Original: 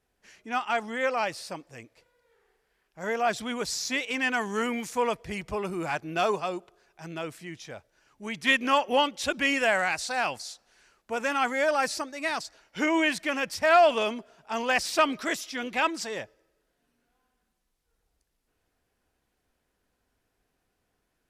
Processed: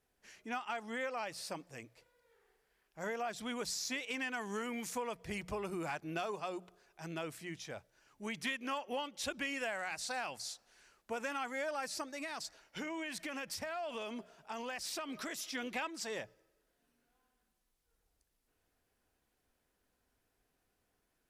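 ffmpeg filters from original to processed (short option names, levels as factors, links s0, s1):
-filter_complex "[0:a]asettb=1/sr,asplit=3[s0][s1][s2];[s0]atrim=end=12.054[s3];[s1]atrim=start=12.05:end=15.55,asetpts=PTS-STARTPTS,afade=t=in:d=0.004:c=qsin,afade=t=out:st=3.496:d=0.004:c=qsin,acompressor=threshold=0.02:ratio=6:attack=3.2:release=140:knee=1:detection=peak[s4];[s2]atrim=start=15.546[s5];[s3][s4]acrossfade=d=0.004:c1=hsin:c2=qsin[s6];[s6][s5]acrossfade=d=0.004:c1=qsin:c2=hsin,highshelf=f=9600:g=5.5,bandreject=f=60:t=h:w=6,bandreject=f=120:t=h:w=6,bandreject=f=180:t=h:w=6,acompressor=threshold=0.0251:ratio=6,volume=0.631"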